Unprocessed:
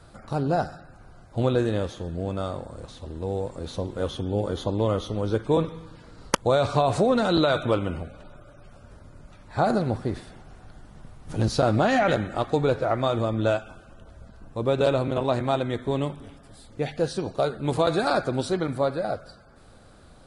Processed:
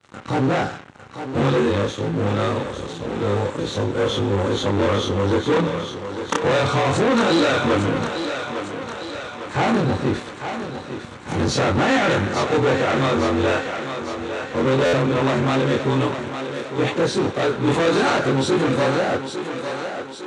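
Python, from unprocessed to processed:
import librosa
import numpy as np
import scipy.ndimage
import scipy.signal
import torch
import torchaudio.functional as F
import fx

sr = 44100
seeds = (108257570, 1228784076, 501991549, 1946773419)

p1 = fx.frame_reverse(x, sr, frame_ms=60.0)
p2 = fx.leveller(p1, sr, passes=5)
p3 = fx.cabinet(p2, sr, low_hz=120.0, low_slope=12, high_hz=7400.0, hz=(180.0, 660.0, 4900.0), db=(-4, -8, -8))
p4 = p3 + fx.echo_thinned(p3, sr, ms=854, feedback_pct=61, hz=270.0, wet_db=-7.5, dry=0)
p5 = fx.buffer_glitch(p4, sr, at_s=(14.85,), block=512, repeats=6)
y = F.gain(torch.from_numpy(p5), -2.0).numpy()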